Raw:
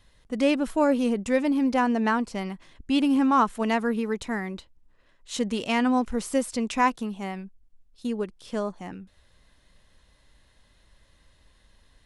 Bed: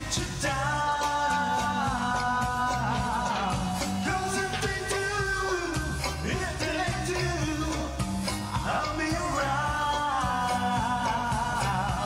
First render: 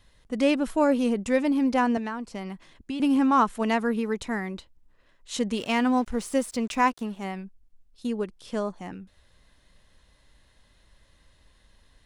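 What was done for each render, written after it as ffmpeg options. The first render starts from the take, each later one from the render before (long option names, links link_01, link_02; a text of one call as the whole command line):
ffmpeg -i in.wav -filter_complex "[0:a]asettb=1/sr,asplit=3[link_01][link_02][link_03];[link_01]atrim=end=1.974[link_04];[link_02]atrim=start=1.97:end=3,asetpts=PTS-STARTPTS,afade=type=in:duration=0.004:curve=qsin,afade=type=out:start_time=1.026:duration=0.004:curve=qsin,acrossover=split=99|1700[link_05][link_06][link_07];[link_05]acompressor=threshold=-54dB:ratio=4[link_08];[link_06]acompressor=threshold=-32dB:ratio=4[link_09];[link_07]acompressor=threshold=-45dB:ratio=4[link_10];[link_08][link_09][link_10]amix=inputs=3:normalize=0[link_11];[link_03]atrim=start=2.996[link_12];[link_04][link_11]acrossfade=duration=0.004:curve1=hsin:curve2=qsin[link_13];[link_13][link_12]acrossfade=duration=0.004:curve1=qsin:curve2=hsin,asettb=1/sr,asplit=3[link_14][link_15][link_16];[link_14]atrim=end=5.554[link_17];[link_15]atrim=start=5.55:end=7.25,asetpts=PTS-STARTPTS,afade=type=in:duration=0.004:curve=qsin,afade=type=out:start_time=1.696:duration=0.004:curve=qsin,aeval=exprs='sgn(val(0))*max(abs(val(0))-0.00355,0)':channel_layout=same[link_18];[link_16]atrim=start=7.246[link_19];[link_17][link_18]acrossfade=duration=0.004:curve1=hsin:curve2=qsin[link_20];[link_20][link_19]acrossfade=duration=0.004:curve1=qsin:curve2=hsin" out.wav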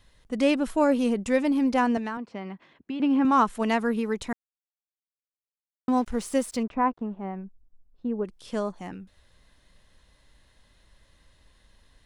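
ffmpeg -i in.wav -filter_complex "[0:a]asettb=1/sr,asplit=3[link_01][link_02][link_03];[link_01]atrim=end=2.174[link_04];[link_02]atrim=start=2.17:end=3.25,asetpts=PTS-STARTPTS,afade=type=in:duration=0.004:curve=qsin,afade=type=out:start_time=1.076:duration=0.004:curve=qsin,highpass=160,lowpass=2800[link_05];[link_03]atrim=start=3.246[link_06];[link_04][link_05]acrossfade=duration=0.004:curve1=hsin:curve2=qsin[link_07];[link_07][link_06]acrossfade=duration=0.004:curve1=qsin:curve2=hsin,asplit=3[link_08][link_09][link_10];[link_08]afade=type=out:start_time=6.62:duration=0.02[link_11];[link_09]lowpass=1100,afade=type=in:start_time=6.62:duration=0.02,afade=type=out:start_time=8.24:duration=0.02[link_12];[link_10]afade=type=in:start_time=8.24:duration=0.02[link_13];[link_11][link_12][link_13]amix=inputs=3:normalize=0,asplit=3[link_14][link_15][link_16];[link_14]atrim=end=4.33,asetpts=PTS-STARTPTS,afade=type=out:start_time=4.326:duration=0.004:curve=hsin[link_17];[link_15]atrim=start=4.33:end=5.88,asetpts=PTS-STARTPTS,volume=0[link_18];[link_16]atrim=start=5.88,asetpts=PTS-STARTPTS,afade=type=in:duration=0.004:curve=hsin[link_19];[link_17][link_18][link_19]concat=n=3:v=0:a=1" out.wav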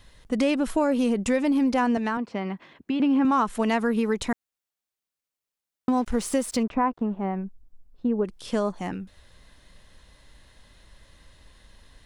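ffmpeg -i in.wav -filter_complex "[0:a]asplit=2[link_01][link_02];[link_02]alimiter=limit=-19dB:level=0:latency=1:release=68,volume=1dB[link_03];[link_01][link_03]amix=inputs=2:normalize=0,acompressor=threshold=-21dB:ratio=2.5" out.wav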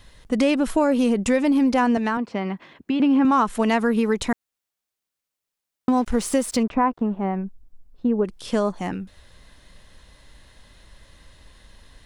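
ffmpeg -i in.wav -af "volume=3.5dB" out.wav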